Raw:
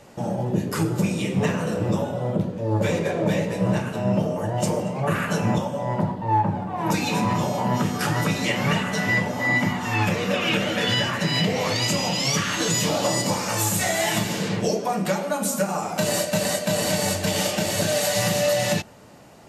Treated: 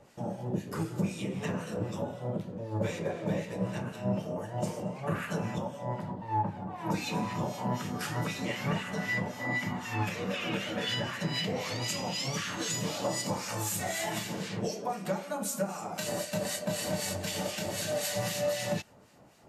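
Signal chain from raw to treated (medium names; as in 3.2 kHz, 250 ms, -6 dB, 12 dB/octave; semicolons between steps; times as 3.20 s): harmonic tremolo 3.9 Hz, depth 70%, crossover 1.4 kHz; trim -7 dB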